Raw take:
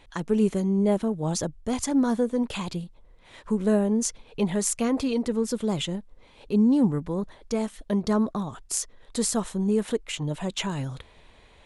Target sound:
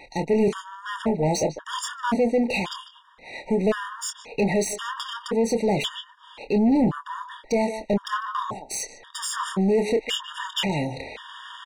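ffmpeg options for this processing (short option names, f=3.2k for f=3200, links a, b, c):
-filter_complex "[0:a]asplit=2[a][b];[b]adelay=150,highpass=300,lowpass=3.4k,asoftclip=type=hard:threshold=-16dB,volume=-14dB[c];[a][c]amix=inputs=2:normalize=0,areverse,acompressor=mode=upward:threshold=-38dB:ratio=2.5,areverse,highshelf=f=9.5k:g=-9,asplit=2[d][e];[e]adelay=26,volume=-9dB[f];[d][f]amix=inputs=2:normalize=0,asplit=2[g][h];[h]highpass=f=720:p=1,volume=24dB,asoftclip=type=tanh:threshold=-10.5dB[i];[g][i]amix=inputs=2:normalize=0,lowpass=f=3.5k:p=1,volume=-6dB,afftfilt=real='re*gt(sin(2*PI*0.94*pts/sr)*(1-2*mod(floor(b*sr/1024/940),2)),0)':imag='im*gt(sin(2*PI*0.94*pts/sr)*(1-2*mod(floor(b*sr/1024/940),2)),0)':win_size=1024:overlap=0.75,volume=-1.5dB"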